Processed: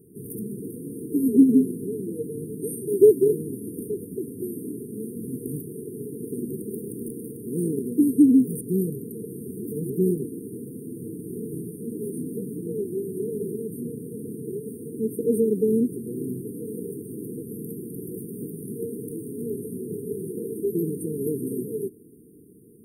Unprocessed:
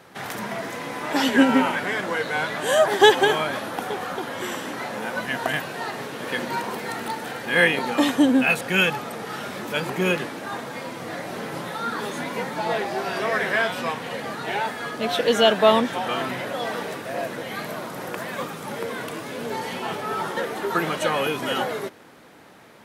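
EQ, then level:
linear-phase brick-wall band-stop 470–8,600 Hz
+2.5 dB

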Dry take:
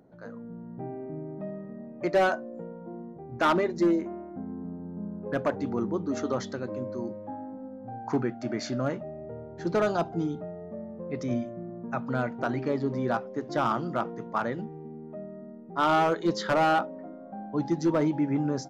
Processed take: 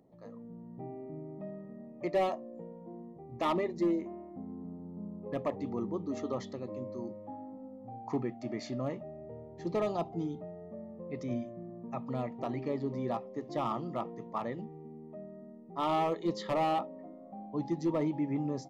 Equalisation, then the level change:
dynamic equaliser 5,800 Hz, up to −5 dB, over −55 dBFS, Q 1.6
Butterworth band-reject 1,500 Hz, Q 3.1
−6.0 dB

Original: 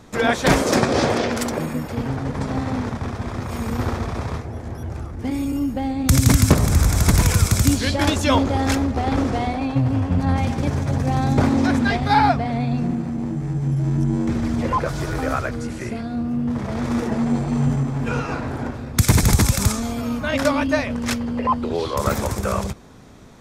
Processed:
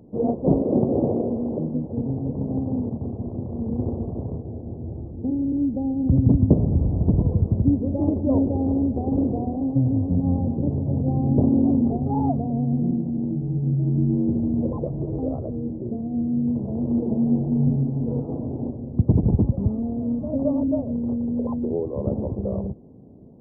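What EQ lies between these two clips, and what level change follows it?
Gaussian smoothing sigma 17 samples
high-pass filter 190 Hz 6 dB per octave
+4.0 dB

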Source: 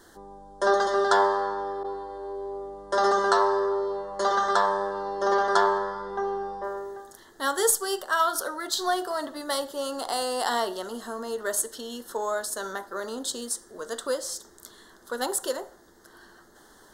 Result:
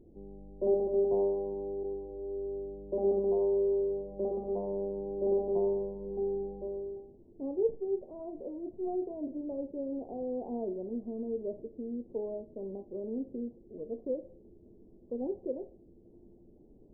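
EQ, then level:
Gaussian smoothing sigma 21 samples
+4.5 dB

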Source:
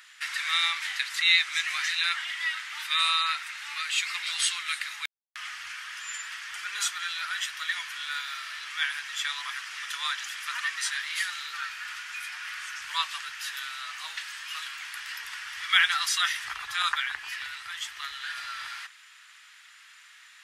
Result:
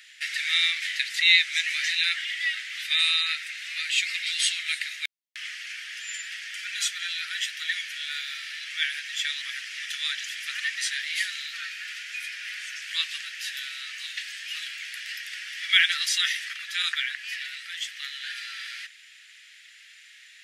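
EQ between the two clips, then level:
Butterworth high-pass 1,800 Hz 36 dB per octave
high-shelf EQ 6,700 Hz −7 dB
+4.5 dB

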